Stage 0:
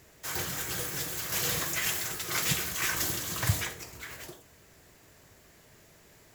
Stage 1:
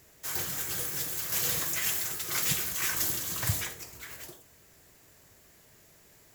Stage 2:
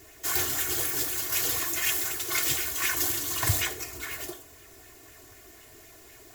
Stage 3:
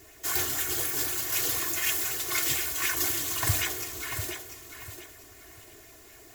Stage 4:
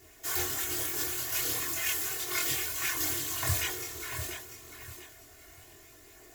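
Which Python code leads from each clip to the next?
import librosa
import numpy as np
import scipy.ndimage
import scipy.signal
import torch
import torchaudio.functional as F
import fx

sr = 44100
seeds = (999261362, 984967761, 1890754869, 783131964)

y1 = fx.high_shelf(x, sr, hz=6600.0, db=7.5)
y1 = y1 * librosa.db_to_amplitude(-3.5)
y2 = y1 + 1.0 * np.pad(y1, (int(2.8 * sr / 1000.0), 0))[:len(y1)]
y2 = fx.rider(y2, sr, range_db=4, speed_s=0.5)
y2 = fx.bell_lfo(y2, sr, hz=4.0, low_hz=290.0, high_hz=2600.0, db=6)
y3 = fx.echo_feedback(y2, sr, ms=694, feedback_pct=29, wet_db=-9.0)
y3 = y3 * librosa.db_to_amplitude(-1.0)
y4 = fx.chorus_voices(y3, sr, voices=2, hz=0.32, base_ms=24, depth_ms=1.6, mix_pct=45)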